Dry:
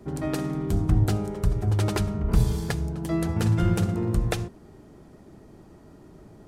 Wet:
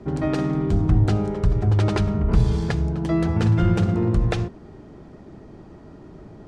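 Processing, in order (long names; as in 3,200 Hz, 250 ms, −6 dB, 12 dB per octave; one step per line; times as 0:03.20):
in parallel at +0.5 dB: brickwall limiter −20 dBFS, peak gain reduction 10.5 dB
on the sum: high-frequency loss of the air 110 metres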